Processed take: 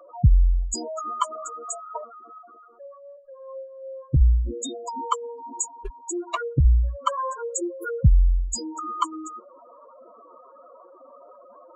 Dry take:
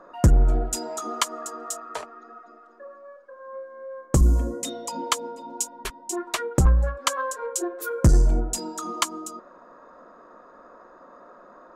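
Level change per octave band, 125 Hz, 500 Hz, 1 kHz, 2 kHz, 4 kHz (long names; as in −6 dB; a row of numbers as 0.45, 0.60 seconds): +0.5, −2.0, +2.0, −7.0, −7.5 decibels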